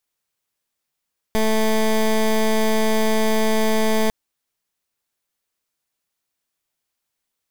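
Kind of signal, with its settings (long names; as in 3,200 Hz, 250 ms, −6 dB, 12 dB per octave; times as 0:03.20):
pulse wave 219 Hz, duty 16% −17.5 dBFS 2.75 s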